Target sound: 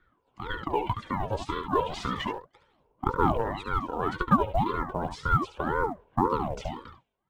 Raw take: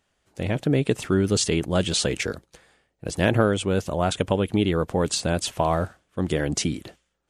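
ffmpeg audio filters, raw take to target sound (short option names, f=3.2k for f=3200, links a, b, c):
-filter_complex "[0:a]asettb=1/sr,asplit=3[a][b][c];[a]atrim=end=1.894[d];[b]atrim=start=1.89:end=2.31,asetpts=PTS-STARTPTS,afade=t=in:d=0.004:c=qsin,afade=t=out:st=0.416:d=0.004:c=qsin,aeval=exprs='val(0)+0.5*0.0473*sgn(val(0))':c=same[e];[c]atrim=start=2.306[f];[d][e]acrossfade=d=0.004:c1=hsin:c2=qsin[g];[g][f]acrossfade=d=0.004:c1=qsin:c2=hsin,afreqshift=120,asubboost=boost=11.5:cutoff=230,aphaser=in_gain=1:out_gain=1:delay=3:decay=0.76:speed=0.33:type=sinusoidal,asplit=3[h][i][j];[h]bandpass=f=730:t=q:w=8,volume=0dB[k];[i]bandpass=f=1.09k:t=q:w=8,volume=-6dB[l];[j]bandpass=f=2.44k:t=q:w=8,volume=-9dB[m];[k][l][m]amix=inputs=3:normalize=0,aecho=1:1:71:0.355,acrusher=bits=8:mode=log:mix=0:aa=0.000001,asplit=2[n][o];[o]acompressor=threshold=-36dB:ratio=6,volume=0dB[p];[n][p]amix=inputs=2:normalize=0,highshelf=f=3.5k:g=-8,bandreject=f=2.3k:w=12,aeval=exprs='val(0)*sin(2*PI*480*n/s+480*0.55/1.9*sin(2*PI*1.9*n/s))':c=same,volume=3.5dB"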